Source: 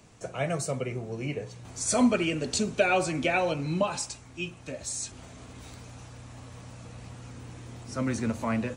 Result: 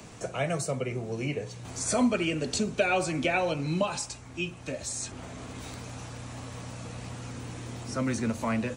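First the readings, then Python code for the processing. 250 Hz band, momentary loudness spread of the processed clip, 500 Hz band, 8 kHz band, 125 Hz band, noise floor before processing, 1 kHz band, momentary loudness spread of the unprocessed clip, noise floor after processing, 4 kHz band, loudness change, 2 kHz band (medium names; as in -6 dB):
-1.0 dB, 15 LU, -1.0 dB, -1.0 dB, +0.5 dB, -49 dBFS, -1.0 dB, 21 LU, -45 dBFS, 0.0 dB, -2.0 dB, -0.5 dB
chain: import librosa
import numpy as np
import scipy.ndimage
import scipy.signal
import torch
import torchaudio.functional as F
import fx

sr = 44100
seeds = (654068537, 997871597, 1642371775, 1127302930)

y = fx.band_squash(x, sr, depth_pct=40)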